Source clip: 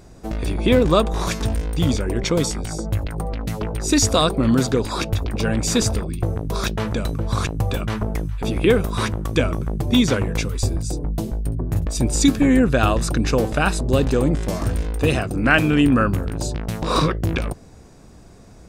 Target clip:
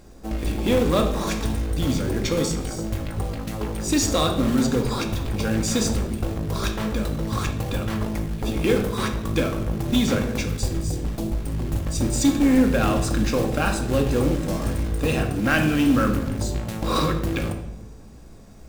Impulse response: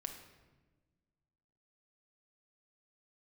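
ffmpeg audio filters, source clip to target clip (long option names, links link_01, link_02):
-filter_complex "[0:a]acontrast=89,acrusher=bits=4:mode=log:mix=0:aa=0.000001[link_01];[1:a]atrim=start_sample=2205,asetrate=66150,aresample=44100[link_02];[link_01][link_02]afir=irnorm=-1:irlink=0,volume=-4dB"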